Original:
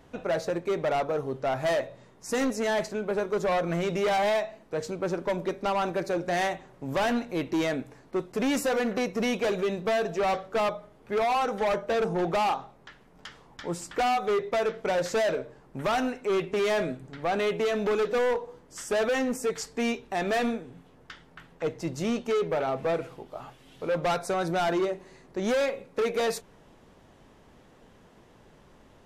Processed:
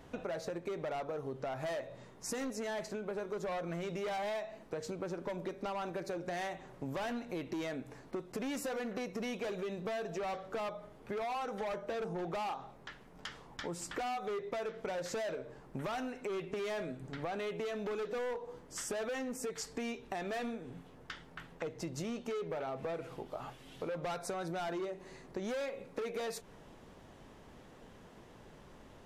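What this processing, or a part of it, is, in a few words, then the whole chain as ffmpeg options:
serial compression, peaks first: -af "acompressor=threshold=-34dB:ratio=6,acompressor=threshold=-38dB:ratio=2"

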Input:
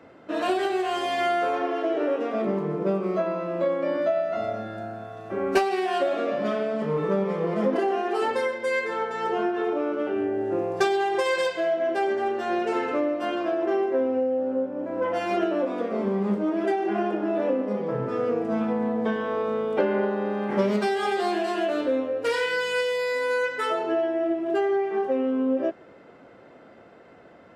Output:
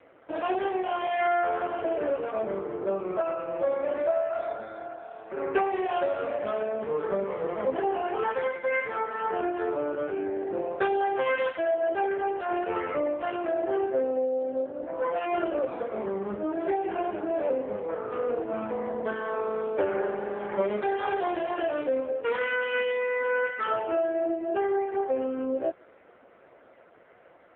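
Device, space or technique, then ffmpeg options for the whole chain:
telephone: -af "highpass=390,lowpass=3400" -ar 8000 -c:a libopencore_amrnb -b:a 5150

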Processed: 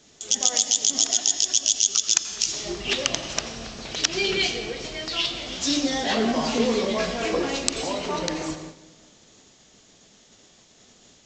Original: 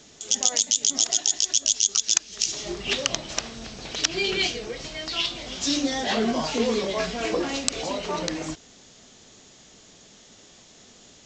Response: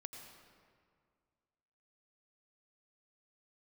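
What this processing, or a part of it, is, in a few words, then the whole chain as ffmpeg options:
keyed gated reverb: -filter_complex "[0:a]asplit=3[link_01][link_02][link_03];[1:a]atrim=start_sample=2205[link_04];[link_02][link_04]afir=irnorm=-1:irlink=0[link_05];[link_03]apad=whole_len=496391[link_06];[link_05][link_06]sidechaingate=range=-33dB:threshold=-49dB:ratio=16:detection=peak,volume=8dB[link_07];[link_01][link_07]amix=inputs=2:normalize=0,volume=-6.5dB"

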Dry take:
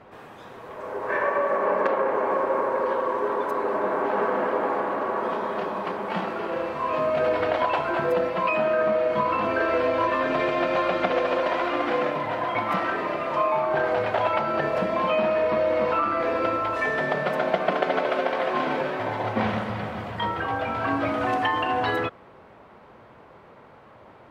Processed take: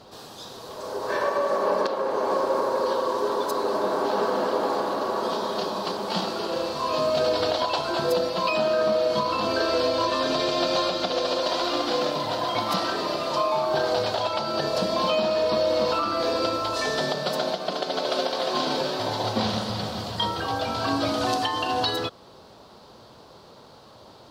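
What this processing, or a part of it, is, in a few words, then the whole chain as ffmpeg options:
over-bright horn tweeter: -af "highshelf=frequency=3100:width_type=q:width=3:gain=13,alimiter=limit=-14dB:level=0:latency=1:release=458,volume=1dB"

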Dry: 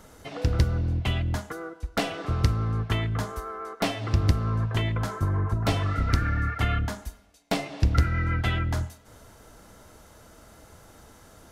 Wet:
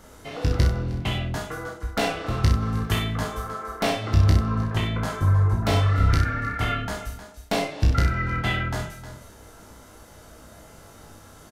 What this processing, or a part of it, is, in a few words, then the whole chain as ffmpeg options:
ducked delay: -filter_complex "[0:a]asettb=1/sr,asplit=3[link_01][link_02][link_03];[link_01]atrim=end=2.604[link_04];[link_02]atrim=start=2.6:end=3.16,asetpts=PTS-STARTPTS,afade=type=in:duration=0.004:curve=qsin,afade=type=out:start_time=0.556:duration=0.004:curve=qsin,aemphasis=mode=production:type=50kf[link_05];[link_03]atrim=start=3.156[link_06];[link_04][link_05]acrossfade=duration=0.004:curve1=hsin:curve2=qsin[link_07];[link_07][link_06]acrossfade=duration=0.004:curve1=qsin:curve2=hsin,asplit=3[link_08][link_09][link_10];[link_09]adelay=310,volume=-7dB[link_11];[link_10]apad=whole_len=521336[link_12];[link_11][link_12]sidechaincompress=threshold=-31dB:ratio=8:attack=11:release=924[link_13];[link_08][link_13]amix=inputs=2:normalize=0,asplit=2[link_14][link_15];[link_15]adelay=32,volume=-5dB[link_16];[link_14][link_16]amix=inputs=2:normalize=0,aecho=1:1:19|63:0.596|0.501"

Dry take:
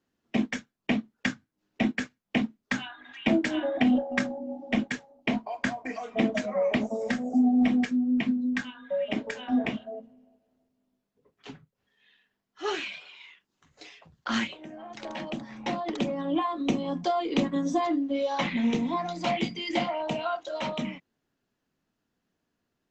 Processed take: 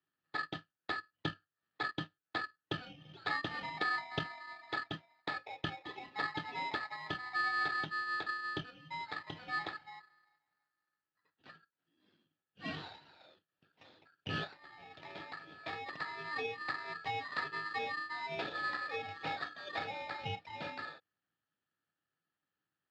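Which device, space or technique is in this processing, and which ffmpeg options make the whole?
ring modulator pedal into a guitar cabinet: -af "aeval=exprs='val(0)*sgn(sin(2*PI*1500*n/s))':channel_layout=same,highpass=98,equalizer=frequency=100:width_type=q:width=4:gain=8,equalizer=frequency=160:width_type=q:width=4:gain=9,equalizer=frequency=300:width_type=q:width=4:gain=8,equalizer=frequency=1100:width_type=q:width=4:gain=-10,equalizer=frequency=2100:width_type=q:width=4:gain=-9,lowpass=frequency=3500:width=0.5412,lowpass=frequency=3500:width=1.3066,volume=-7.5dB"

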